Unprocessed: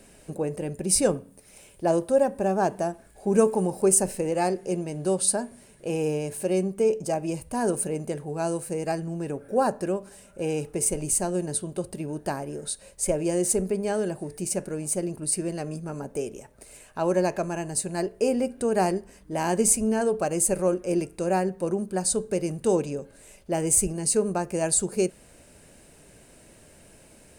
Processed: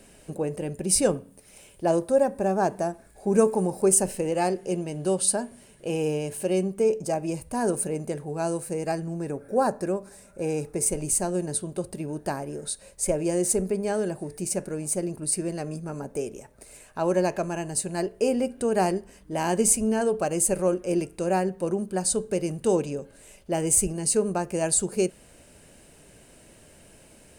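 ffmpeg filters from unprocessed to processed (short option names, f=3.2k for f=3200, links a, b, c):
-af "asetnsamples=n=441:p=0,asendcmd='1.95 equalizer g -6;3.93 equalizer g 5;6.78 equalizer g -3;9.13 equalizer g -13;10.86 equalizer g -3;17.08 equalizer g 3.5',equalizer=f=3k:t=o:w=0.2:g=3"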